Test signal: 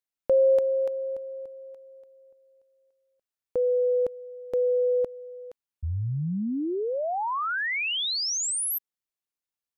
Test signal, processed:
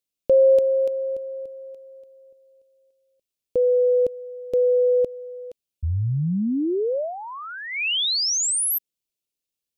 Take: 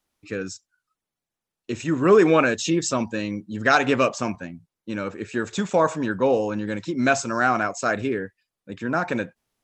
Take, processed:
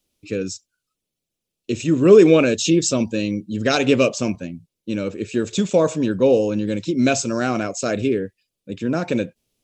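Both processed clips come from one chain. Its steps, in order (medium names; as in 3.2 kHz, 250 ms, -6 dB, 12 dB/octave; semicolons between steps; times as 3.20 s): high-order bell 1.2 kHz -12 dB; trim +5.5 dB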